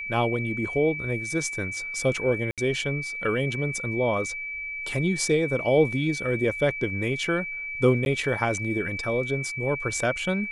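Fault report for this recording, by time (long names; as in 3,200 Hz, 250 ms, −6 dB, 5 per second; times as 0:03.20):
whistle 2,300 Hz −31 dBFS
0:02.51–0:02.58: drop-out 67 ms
0:08.05–0:08.06: drop-out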